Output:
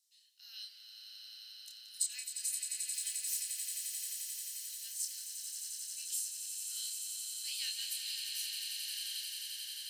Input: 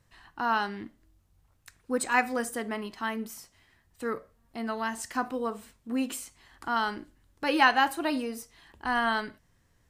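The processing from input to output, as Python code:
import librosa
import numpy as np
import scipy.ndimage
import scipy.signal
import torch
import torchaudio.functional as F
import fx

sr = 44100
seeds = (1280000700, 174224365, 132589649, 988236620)

y = fx.zero_step(x, sr, step_db=-38.5, at=(2.94, 3.37))
y = scipy.signal.sosfilt(scipy.signal.cheby2(4, 60, 1200.0, 'highpass', fs=sr, output='sos'), y)
y = fx.doubler(y, sr, ms=28.0, db=-4.5)
y = fx.echo_swell(y, sr, ms=88, loudest=8, wet_db=-7.5)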